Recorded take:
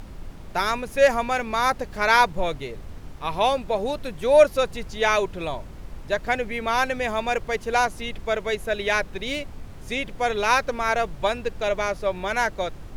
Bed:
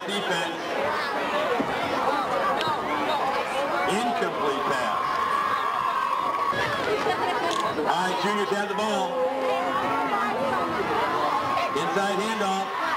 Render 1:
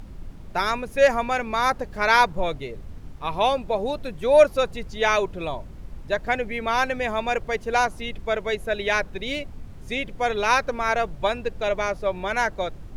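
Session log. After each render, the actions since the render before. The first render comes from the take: noise reduction 6 dB, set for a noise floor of -40 dBFS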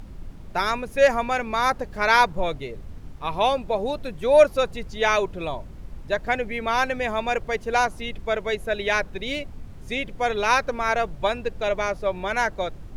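no audible change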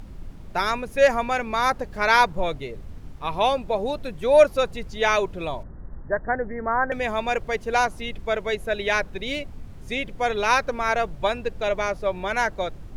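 5.63–6.92 s: steep low-pass 1.9 kHz 96 dB/octave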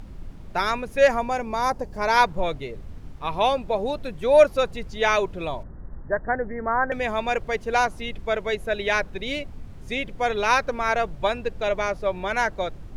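1.19–2.17 s: time-frequency box 1.1–4.5 kHz -7 dB; treble shelf 8.5 kHz -4 dB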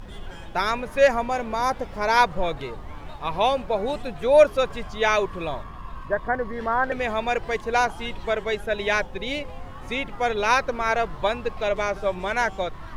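add bed -18 dB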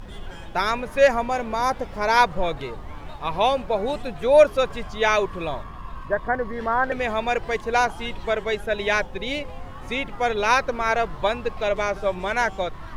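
trim +1 dB; peak limiter -3 dBFS, peak gain reduction 0.5 dB

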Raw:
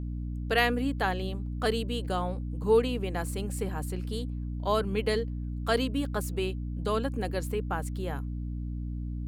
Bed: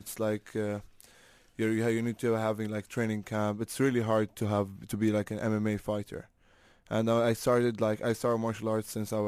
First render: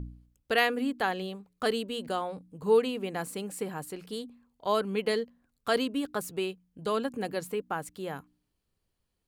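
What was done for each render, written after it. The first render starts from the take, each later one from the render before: de-hum 60 Hz, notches 5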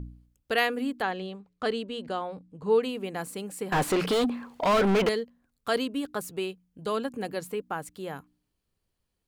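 1.02–2.82 s: distance through air 76 m; 3.72–5.09 s: overdrive pedal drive 38 dB, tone 1.8 kHz, clips at -15 dBFS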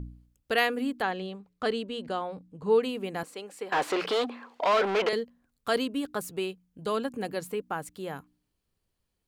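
3.23–5.13 s: three-band isolator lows -22 dB, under 320 Hz, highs -13 dB, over 6.3 kHz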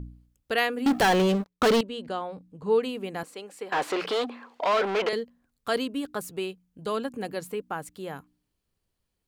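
0.86–1.81 s: waveshaping leveller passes 5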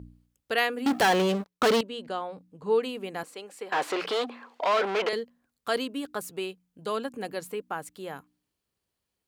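high-pass 46 Hz; bass shelf 200 Hz -8 dB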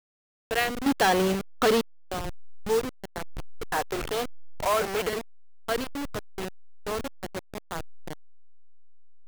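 send-on-delta sampling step -25.5 dBFS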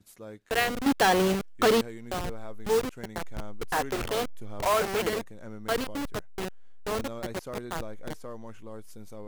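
add bed -13 dB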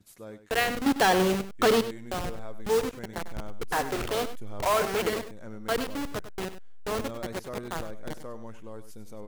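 delay 98 ms -12.5 dB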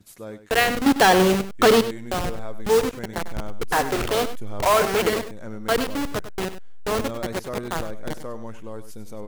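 trim +6.5 dB

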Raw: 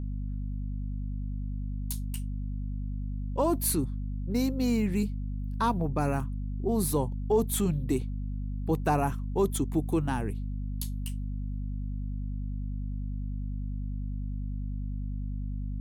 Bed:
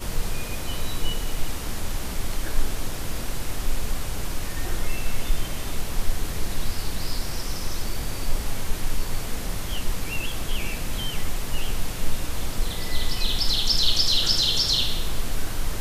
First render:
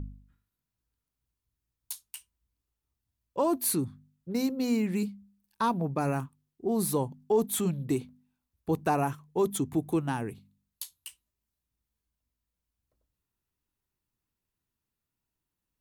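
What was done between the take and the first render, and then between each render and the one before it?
de-hum 50 Hz, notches 5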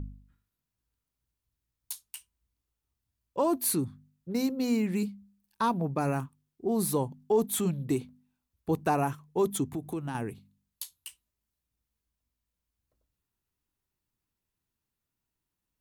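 9.71–10.15 s: compression 3:1, threshold -32 dBFS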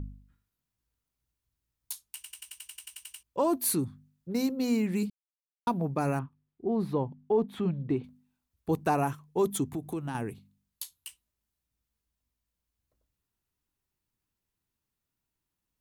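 2.15 s: stutter in place 0.09 s, 12 plays; 5.10–5.67 s: mute; 6.19–8.04 s: distance through air 360 m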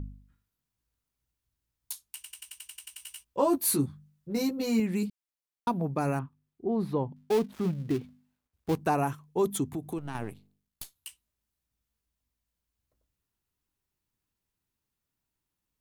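2.98–4.80 s: doubling 14 ms -3 dB; 7.16–8.78 s: dead-time distortion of 0.15 ms; 9.98–10.96 s: partial rectifier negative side -12 dB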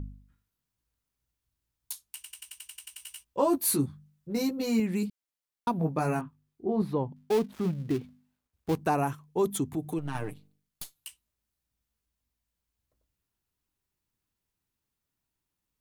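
5.77–6.82 s: doubling 19 ms -4 dB; 9.76–11.07 s: comb 6.6 ms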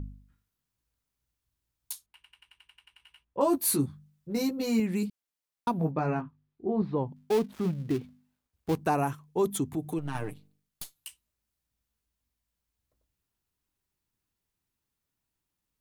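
2.06–3.41 s: distance through air 490 m; 5.91–6.98 s: distance through air 210 m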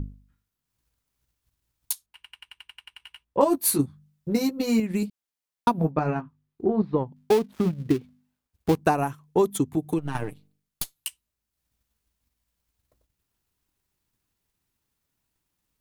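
transient shaper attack +7 dB, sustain -6 dB; in parallel at -1 dB: compression, threshold -33 dBFS, peak gain reduction 17 dB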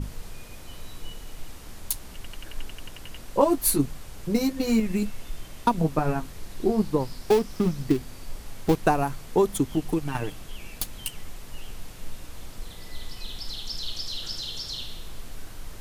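add bed -12.5 dB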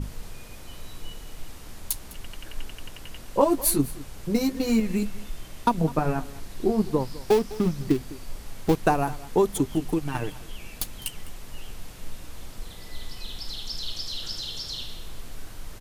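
delay 205 ms -19 dB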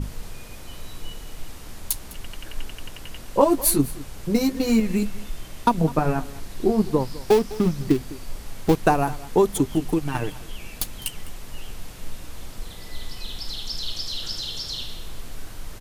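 trim +3 dB

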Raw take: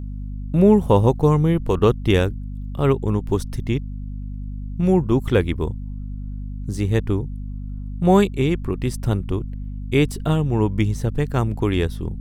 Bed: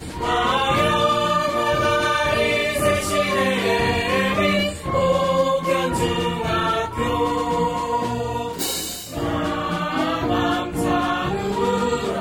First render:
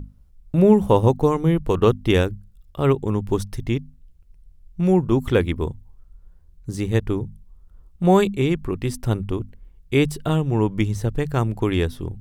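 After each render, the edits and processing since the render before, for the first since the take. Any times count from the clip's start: hum notches 50/100/150/200/250 Hz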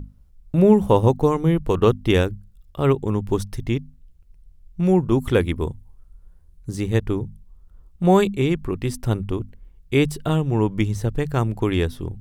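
5.12–6.70 s: peaking EQ 10 kHz +6 dB 0.52 oct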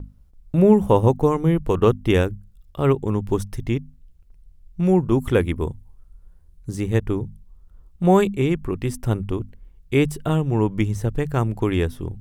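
dynamic bell 4.2 kHz, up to -7 dB, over -50 dBFS, Q 2; gate with hold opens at -44 dBFS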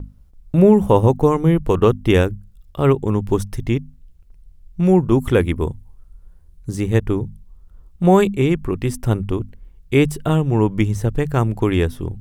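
trim +3.5 dB; peak limiter -2 dBFS, peak gain reduction 2.5 dB

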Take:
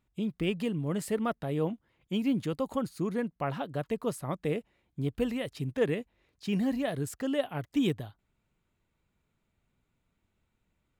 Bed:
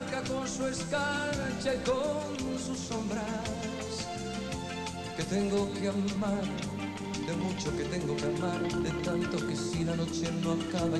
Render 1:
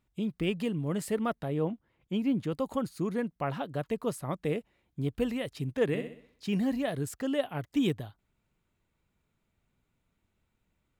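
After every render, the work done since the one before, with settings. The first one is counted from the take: 1.48–2.52 s: treble shelf 3.1 kHz -8 dB; 5.86–6.47 s: flutter echo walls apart 10.9 m, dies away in 0.54 s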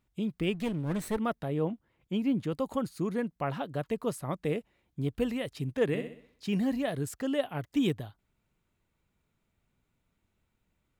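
0.54–1.17 s: comb filter that takes the minimum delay 0.49 ms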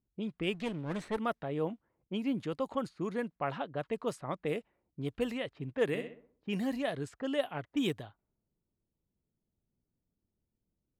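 level-controlled noise filter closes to 360 Hz, open at -25.5 dBFS; bass shelf 270 Hz -9 dB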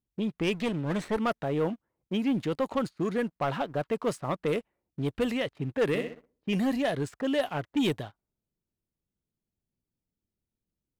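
waveshaping leveller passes 2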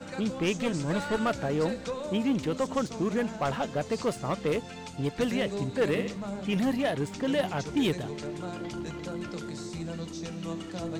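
add bed -5 dB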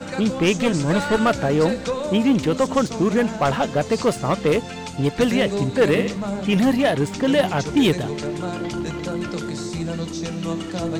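trim +9.5 dB

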